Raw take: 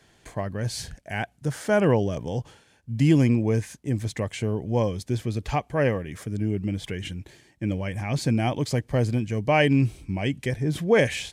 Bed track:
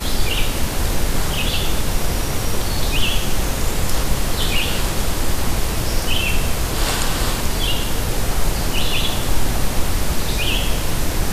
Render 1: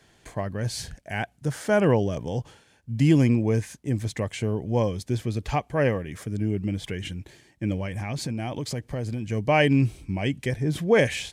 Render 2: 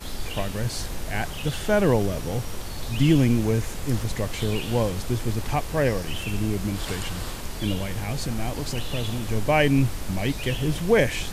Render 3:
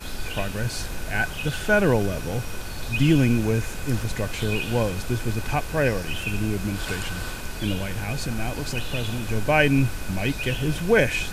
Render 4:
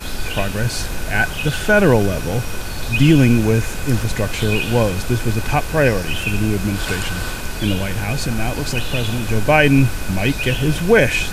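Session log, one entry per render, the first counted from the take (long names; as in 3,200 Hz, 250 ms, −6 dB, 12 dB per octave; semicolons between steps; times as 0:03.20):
0:07.85–0:09.29: downward compressor, threshold −26 dBFS
mix in bed track −13 dB
hollow resonant body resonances 1,500/2,500 Hz, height 15 dB, ringing for 60 ms
level +7 dB; brickwall limiter −2 dBFS, peak gain reduction 2.5 dB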